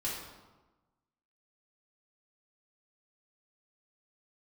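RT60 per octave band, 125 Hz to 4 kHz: 1.3 s, 1.3 s, 1.2 s, 1.2 s, 0.90 s, 0.75 s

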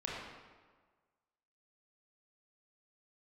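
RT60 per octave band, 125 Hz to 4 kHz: 1.4 s, 1.4 s, 1.5 s, 1.5 s, 1.2 s, 1.0 s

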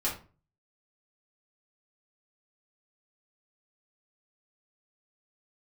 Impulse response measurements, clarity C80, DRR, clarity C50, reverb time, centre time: 13.5 dB, -7.5 dB, 8.0 dB, 0.35 s, 27 ms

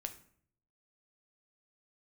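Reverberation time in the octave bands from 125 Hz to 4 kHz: 0.95 s, 0.75 s, 0.60 s, 0.55 s, 0.50 s, 0.40 s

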